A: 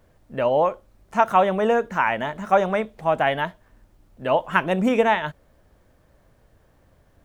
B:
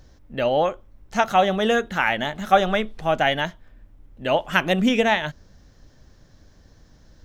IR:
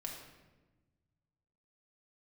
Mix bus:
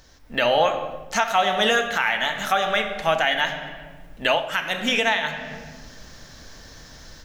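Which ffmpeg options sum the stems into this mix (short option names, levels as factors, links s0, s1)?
-filter_complex "[0:a]acompressor=threshold=0.0794:ratio=6,volume=0.211,asplit=2[s0][s1];[1:a]tiltshelf=f=660:g=-7,volume=-1,volume=0.794,asplit=2[s2][s3];[s3]volume=0.631[s4];[s1]apad=whole_len=319679[s5];[s2][s5]sidechaincompress=threshold=0.00891:ratio=8:attack=16:release=1380[s6];[2:a]atrim=start_sample=2205[s7];[s4][s7]afir=irnorm=-1:irlink=0[s8];[s0][s6][s8]amix=inputs=3:normalize=0,dynaudnorm=f=180:g=3:m=3.16,alimiter=limit=0.376:level=0:latency=1:release=387"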